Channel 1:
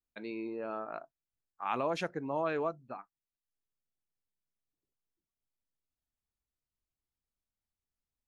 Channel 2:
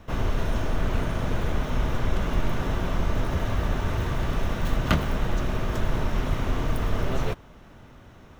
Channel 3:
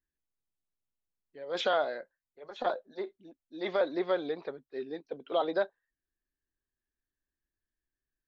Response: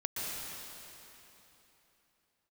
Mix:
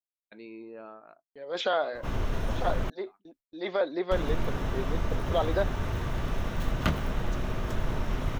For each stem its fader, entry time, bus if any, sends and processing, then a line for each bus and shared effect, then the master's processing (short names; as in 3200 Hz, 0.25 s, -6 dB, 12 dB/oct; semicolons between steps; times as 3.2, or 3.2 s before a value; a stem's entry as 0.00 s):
-5.0 dB, 0.15 s, no send, auto duck -13 dB, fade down 0.55 s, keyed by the third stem
-4.5 dB, 1.95 s, muted 2.9–4.11, no send, dry
+1.0 dB, 0.00 s, no send, gate with hold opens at -51 dBFS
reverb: off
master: gate with hold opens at -46 dBFS